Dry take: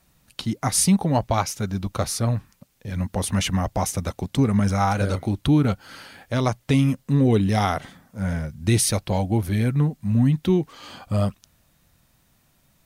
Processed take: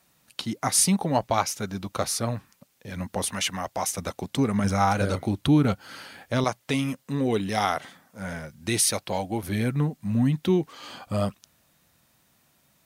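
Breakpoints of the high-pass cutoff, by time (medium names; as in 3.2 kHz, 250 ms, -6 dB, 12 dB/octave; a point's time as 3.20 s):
high-pass 6 dB/octave
290 Hz
from 3.29 s 750 Hz
from 3.98 s 270 Hz
from 4.64 s 130 Hz
from 6.44 s 490 Hz
from 9.43 s 210 Hz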